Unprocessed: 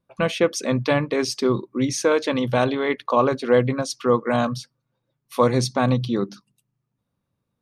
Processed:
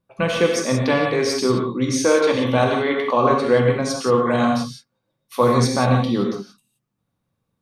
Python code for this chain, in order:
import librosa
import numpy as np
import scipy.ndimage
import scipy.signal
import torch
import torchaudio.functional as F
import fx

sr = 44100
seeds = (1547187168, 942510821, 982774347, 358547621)

y = fx.rev_gated(x, sr, seeds[0], gate_ms=200, shape='flat', drr_db=0.0)